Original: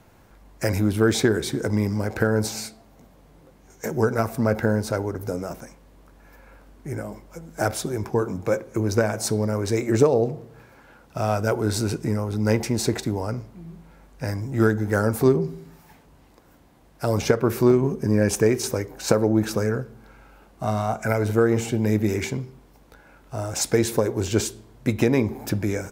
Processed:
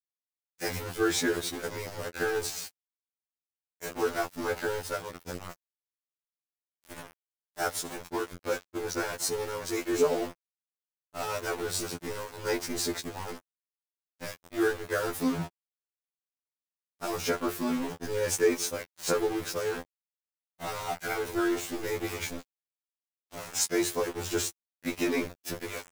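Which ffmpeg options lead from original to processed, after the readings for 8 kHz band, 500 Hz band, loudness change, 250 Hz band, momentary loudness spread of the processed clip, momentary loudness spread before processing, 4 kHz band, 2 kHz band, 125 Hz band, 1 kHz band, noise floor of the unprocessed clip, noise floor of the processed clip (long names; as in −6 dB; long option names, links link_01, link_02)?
−3.0 dB, −8.5 dB, −8.0 dB, −10.5 dB, 14 LU, 14 LU, −2.5 dB, −4.0 dB, −19.5 dB, −5.5 dB, −54 dBFS, below −85 dBFS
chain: -af "tiltshelf=frequency=770:gain=-4,bandreject=frequency=50:width_type=h:width=6,bandreject=frequency=100:width_type=h:width=6,aeval=exprs='val(0)*gte(abs(val(0)),0.0473)':channel_layout=same,afftfilt=real='re*2*eq(mod(b,4),0)':imag='im*2*eq(mod(b,4),0)':win_size=2048:overlap=0.75,volume=-4dB"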